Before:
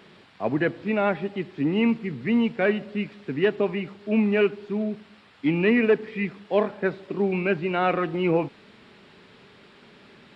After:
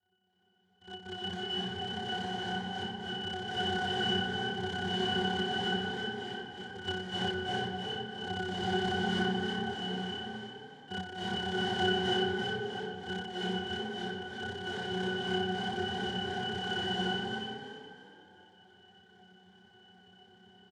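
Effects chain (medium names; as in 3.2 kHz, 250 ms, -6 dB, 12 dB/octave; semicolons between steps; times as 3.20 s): low-pass that closes with the level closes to 680 Hz, closed at -19.5 dBFS; level rider gain up to 13 dB; speed mistake 15 ips tape played at 7.5 ips; noise-vocoded speech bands 1; AM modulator 33 Hz, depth 95%; pitch-class resonator F#, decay 0.26 s; frequency-shifting echo 335 ms, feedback 37%, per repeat +32 Hz, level -5 dB; reverberation RT60 1.2 s, pre-delay 226 ms, DRR -6 dB; trim -2 dB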